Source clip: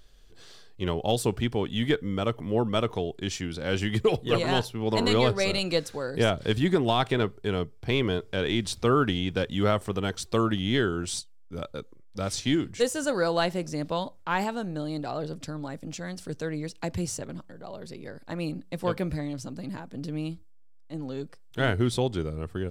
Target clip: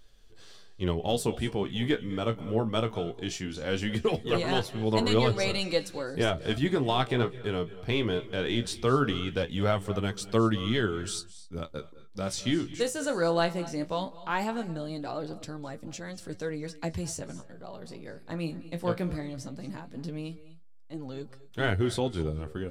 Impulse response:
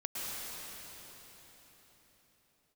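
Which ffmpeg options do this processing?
-filter_complex "[0:a]flanger=delay=8.9:depth=9.1:regen=43:speed=0.19:shape=sinusoidal,asplit=2[link_01][link_02];[1:a]atrim=start_sample=2205,atrim=end_sample=6174,asetrate=23373,aresample=44100[link_03];[link_02][link_03]afir=irnorm=-1:irlink=0,volume=-14dB[link_04];[link_01][link_04]amix=inputs=2:normalize=0"

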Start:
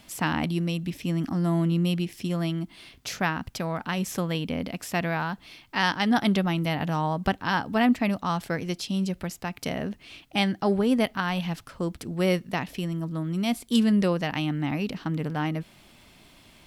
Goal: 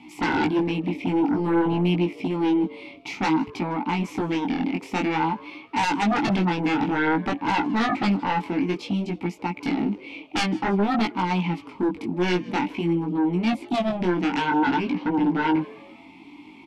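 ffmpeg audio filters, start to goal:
ffmpeg -i in.wav -filter_complex "[0:a]asplit=3[link_01][link_02][link_03];[link_01]bandpass=frequency=300:width_type=q:width=8,volume=0dB[link_04];[link_02]bandpass=frequency=870:width_type=q:width=8,volume=-6dB[link_05];[link_03]bandpass=frequency=2240:width_type=q:width=8,volume=-9dB[link_06];[link_04][link_05][link_06]amix=inputs=3:normalize=0,aeval=exprs='0.075*sin(PI/2*4.47*val(0)/0.075)':channel_layout=same,flanger=delay=16.5:depth=6:speed=0.53,asplit=2[link_07][link_08];[link_08]asplit=3[link_09][link_10][link_11];[link_09]adelay=157,afreqshift=120,volume=-22.5dB[link_12];[link_10]adelay=314,afreqshift=240,volume=-30.5dB[link_13];[link_11]adelay=471,afreqshift=360,volume=-38.4dB[link_14];[link_12][link_13][link_14]amix=inputs=3:normalize=0[link_15];[link_07][link_15]amix=inputs=2:normalize=0,volume=6.5dB" out.wav

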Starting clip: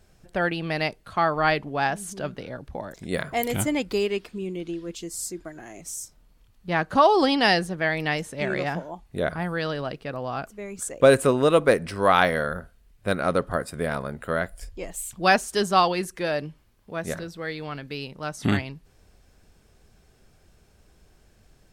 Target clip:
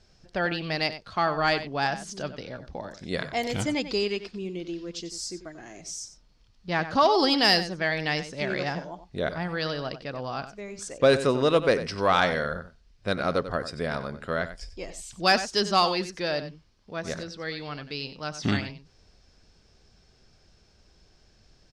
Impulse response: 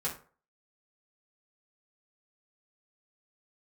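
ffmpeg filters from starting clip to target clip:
-filter_complex "[0:a]lowpass=frequency=5200:width_type=q:width=3.2,acontrast=30,asplit=2[link_01][link_02];[link_02]adelay=93.29,volume=-12dB,highshelf=frequency=4000:gain=-2.1[link_03];[link_01][link_03]amix=inputs=2:normalize=0,volume=-8dB"

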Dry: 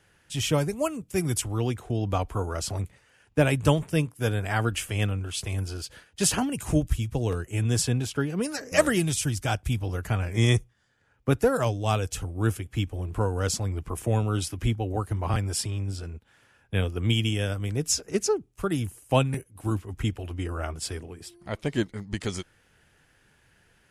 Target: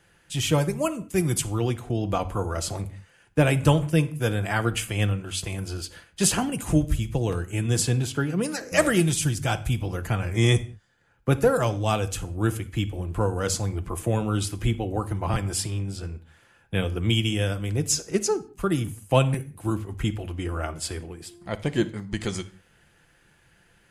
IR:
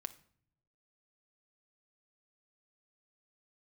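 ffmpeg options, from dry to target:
-filter_complex "[0:a]bandreject=frequency=5500:width=17[link_01];[1:a]atrim=start_sample=2205,afade=type=out:start_time=0.26:duration=0.01,atrim=end_sample=11907[link_02];[link_01][link_02]afir=irnorm=-1:irlink=0,acontrast=27"

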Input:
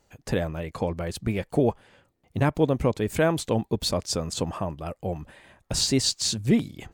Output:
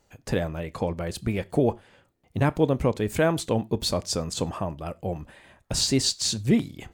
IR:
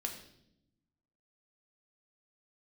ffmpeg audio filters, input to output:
-filter_complex "[0:a]asplit=2[link_01][link_02];[1:a]atrim=start_sample=2205,atrim=end_sample=3528,adelay=29[link_03];[link_02][link_03]afir=irnorm=-1:irlink=0,volume=-18.5dB[link_04];[link_01][link_04]amix=inputs=2:normalize=0"

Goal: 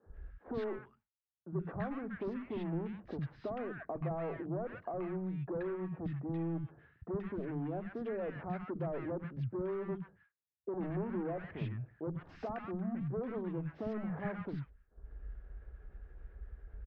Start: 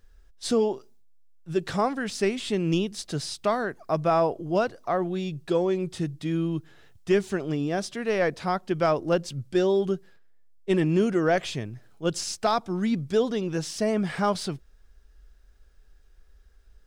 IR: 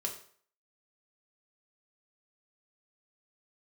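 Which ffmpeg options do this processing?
-filter_complex "[0:a]highpass=45,acompressor=mode=upward:threshold=-42dB:ratio=2.5,asoftclip=type=hard:threshold=-28dB,agate=range=-33dB:threshold=-48dB:ratio=3:detection=peak,lowpass=frequency=1900:width=0.5412,lowpass=frequency=1900:width=1.3066,acompressor=threshold=-40dB:ratio=6,lowshelf=frequency=370:gain=6,acrossover=split=230|1200[link_01][link_02][link_03];[link_01]adelay=60[link_04];[link_03]adelay=130[link_05];[link_04][link_02][link_05]amix=inputs=3:normalize=0,volume=1dB"

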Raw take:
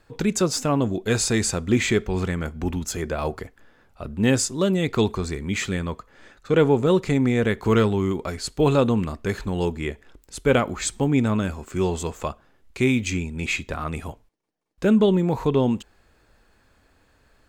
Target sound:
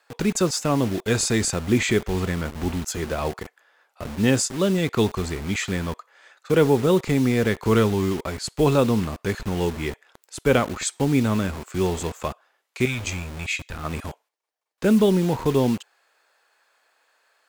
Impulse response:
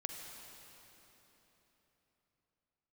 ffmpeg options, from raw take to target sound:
-filter_complex "[0:a]asettb=1/sr,asplit=3[link_01][link_02][link_03];[link_01]atrim=end=12.854[link_04];[link_02]atrim=start=12.85:end=13.84,asetpts=PTS-STARTPTS,afade=type=in:duration=0.004:curve=qsin,afade=type=out:start_time=0.986:duration=0.004:curve=qsin,equalizer=frequency=250:width_type=o:width=1:gain=-12,equalizer=frequency=500:width_type=o:width=1:gain=-10,equalizer=frequency=1000:width_type=o:width=1:gain=-9[link_05];[link_03]atrim=start=13.836[link_06];[link_04][link_05]acrossfade=duration=0.004:curve1=hsin:curve2=qsin[link_07];[link_07][link_06]acrossfade=duration=0.004:curve1=qsin:curve2=hsin,acrossover=split=530[link_08][link_09];[link_08]acrusher=bits=5:mix=0:aa=0.000001[link_10];[link_10][link_09]amix=inputs=2:normalize=0"

